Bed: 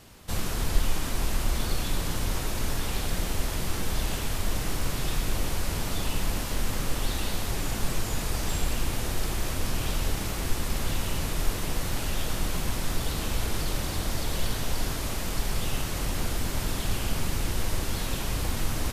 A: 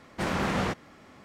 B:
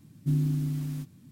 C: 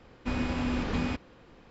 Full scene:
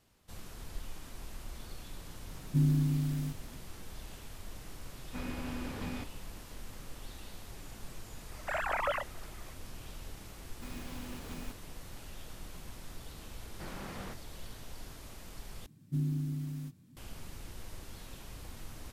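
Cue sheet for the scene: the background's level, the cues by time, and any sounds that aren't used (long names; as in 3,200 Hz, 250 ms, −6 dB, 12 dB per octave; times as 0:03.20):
bed −18 dB
0:02.28: mix in B −1 dB
0:04.88: mix in C −5 dB + flanger 1.4 Hz, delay 5.2 ms, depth 6.8 ms, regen +73%
0:08.29: mix in A −5.5 dB + three sine waves on the formant tracks
0:10.36: mix in C −16 dB + one scale factor per block 3 bits
0:13.41: mix in A −17 dB
0:15.66: overwrite with B −6.5 dB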